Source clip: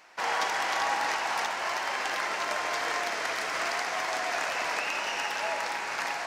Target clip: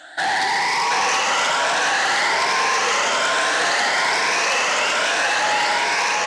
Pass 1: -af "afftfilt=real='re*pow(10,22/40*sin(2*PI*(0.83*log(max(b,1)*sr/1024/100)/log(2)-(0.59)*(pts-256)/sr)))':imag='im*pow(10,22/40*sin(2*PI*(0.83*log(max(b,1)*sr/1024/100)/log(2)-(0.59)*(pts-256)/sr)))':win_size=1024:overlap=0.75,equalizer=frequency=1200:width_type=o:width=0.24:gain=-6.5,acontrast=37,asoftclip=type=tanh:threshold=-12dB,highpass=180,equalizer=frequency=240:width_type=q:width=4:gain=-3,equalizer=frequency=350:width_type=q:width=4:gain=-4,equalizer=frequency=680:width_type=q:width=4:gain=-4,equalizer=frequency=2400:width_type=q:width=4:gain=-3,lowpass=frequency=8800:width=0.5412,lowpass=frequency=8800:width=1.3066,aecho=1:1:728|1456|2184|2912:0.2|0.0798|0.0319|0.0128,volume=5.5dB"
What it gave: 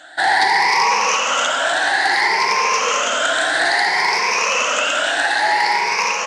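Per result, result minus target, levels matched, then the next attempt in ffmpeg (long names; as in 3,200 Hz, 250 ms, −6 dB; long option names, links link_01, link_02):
echo-to-direct −11 dB; soft clipping: distortion −11 dB
-af "afftfilt=real='re*pow(10,22/40*sin(2*PI*(0.83*log(max(b,1)*sr/1024/100)/log(2)-(0.59)*(pts-256)/sr)))':imag='im*pow(10,22/40*sin(2*PI*(0.83*log(max(b,1)*sr/1024/100)/log(2)-(0.59)*(pts-256)/sr)))':win_size=1024:overlap=0.75,equalizer=frequency=1200:width_type=o:width=0.24:gain=-6.5,acontrast=37,asoftclip=type=tanh:threshold=-12dB,highpass=180,equalizer=frequency=240:width_type=q:width=4:gain=-3,equalizer=frequency=350:width_type=q:width=4:gain=-4,equalizer=frequency=680:width_type=q:width=4:gain=-4,equalizer=frequency=2400:width_type=q:width=4:gain=-3,lowpass=frequency=8800:width=0.5412,lowpass=frequency=8800:width=1.3066,aecho=1:1:728|1456|2184|2912|3640:0.708|0.283|0.113|0.0453|0.0181,volume=5.5dB"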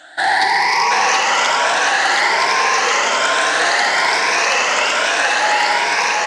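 soft clipping: distortion −11 dB
-af "afftfilt=real='re*pow(10,22/40*sin(2*PI*(0.83*log(max(b,1)*sr/1024/100)/log(2)-(0.59)*(pts-256)/sr)))':imag='im*pow(10,22/40*sin(2*PI*(0.83*log(max(b,1)*sr/1024/100)/log(2)-(0.59)*(pts-256)/sr)))':win_size=1024:overlap=0.75,equalizer=frequency=1200:width_type=o:width=0.24:gain=-6.5,acontrast=37,asoftclip=type=tanh:threshold=-22dB,highpass=180,equalizer=frequency=240:width_type=q:width=4:gain=-3,equalizer=frequency=350:width_type=q:width=4:gain=-4,equalizer=frequency=680:width_type=q:width=4:gain=-4,equalizer=frequency=2400:width_type=q:width=4:gain=-3,lowpass=frequency=8800:width=0.5412,lowpass=frequency=8800:width=1.3066,aecho=1:1:728|1456|2184|2912|3640:0.708|0.283|0.113|0.0453|0.0181,volume=5.5dB"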